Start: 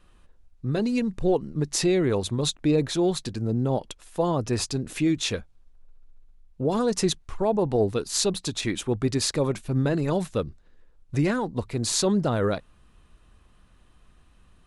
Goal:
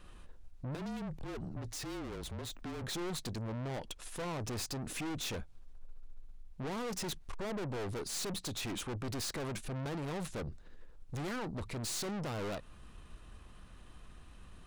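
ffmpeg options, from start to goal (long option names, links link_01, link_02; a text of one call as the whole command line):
ffmpeg -i in.wav -filter_complex "[0:a]aeval=exprs='(tanh(70.8*val(0)+0.35)-tanh(0.35))/70.8':channel_layout=same,asettb=1/sr,asplit=3[link_01][link_02][link_03];[link_01]atrim=end=0.754[link_04];[link_02]atrim=start=0.75:end=2.84,asetpts=PTS-STARTPTS,afade=type=in:duration=0.004:curve=qsin,afade=type=out:start_time=2.086:duration=0.004:curve=qsin,afreqshift=-31[link_05];[link_03]atrim=start=2.836[link_06];[link_04][link_05]acrossfade=duration=0.004:curve1=hsin:curve2=qsin[link_07];[link_07][link_06]acrossfade=duration=0.004:curve1=qsin:curve2=hsin,alimiter=level_in=15dB:limit=-24dB:level=0:latency=1:release=113,volume=-15dB,volume=4.5dB" out.wav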